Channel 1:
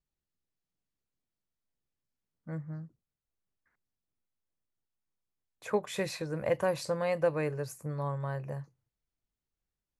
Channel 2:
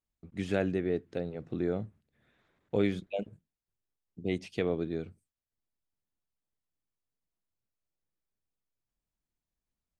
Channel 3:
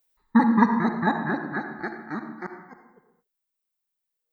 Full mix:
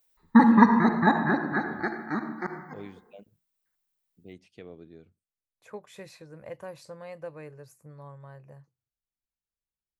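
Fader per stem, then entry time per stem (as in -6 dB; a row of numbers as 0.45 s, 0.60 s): -11.5 dB, -15.0 dB, +2.0 dB; 0.00 s, 0.00 s, 0.00 s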